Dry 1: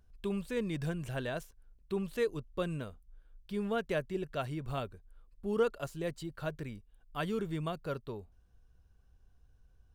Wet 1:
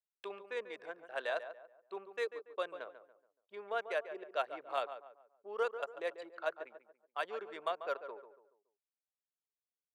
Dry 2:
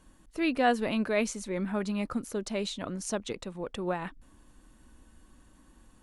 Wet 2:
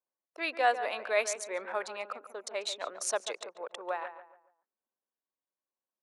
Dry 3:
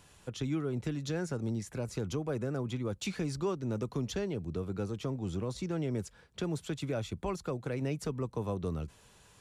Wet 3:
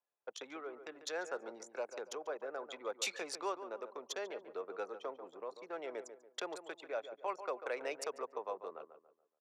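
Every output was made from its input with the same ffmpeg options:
-filter_complex "[0:a]tremolo=f=0.64:d=0.36,anlmdn=0.158,highpass=f=540:w=0.5412,highpass=f=540:w=1.3066,equalizer=f=3k:w=5.9:g=-4.5,asplit=2[a][b];[b]adelay=142,lowpass=f=1.7k:p=1,volume=-10dB,asplit=2[c][d];[d]adelay=142,lowpass=f=1.7k:p=1,volume=0.38,asplit=2[e][f];[f]adelay=142,lowpass=f=1.7k:p=1,volume=0.38,asplit=2[g][h];[h]adelay=142,lowpass=f=1.7k:p=1,volume=0.38[i];[c][e][g][i]amix=inputs=4:normalize=0[j];[a][j]amix=inputs=2:normalize=0,volume=4dB"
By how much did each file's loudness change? -3.5, -2.5, -7.0 LU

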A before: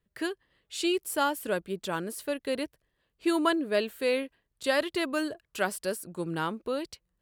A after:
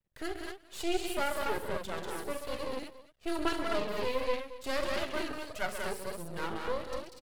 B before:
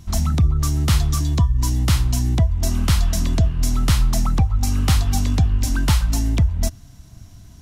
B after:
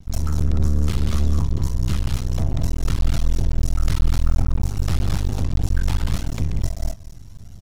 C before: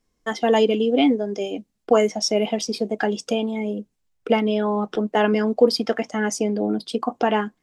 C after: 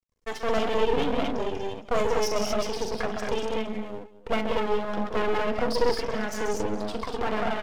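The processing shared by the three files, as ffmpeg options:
-filter_complex "[0:a]lowshelf=f=370:g=3.5,asplit=2[a][b];[b]aecho=0:1:41|67|134|191|237|245:0.282|0.237|0.355|0.596|0.355|0.501[c];[a][c]amix=inputs=2:normalize=0,asoftclip=type=tanh:threshold=-9.5dB,asplit=2[d][e];[e]aecho=0:1:221:0.141[f];[d][f]amix=inputs=2:normalize=0,flanger=delay=1.3:depth=1.2:regen=19:speed=1.6:shape=triangular,aeval=exprs='max(val(0),0)':c=same,adynamicequalizer=threshold=0.00398:dfrequency=5700:dqfactor=0.7:tfrequency=5700:tqfactor=0.7:attack=5:release=100:ratio=0.375:range=2.5:mode=cutabove:tftype=highshelf"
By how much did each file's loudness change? -5.0, -4.0, -6.5 LU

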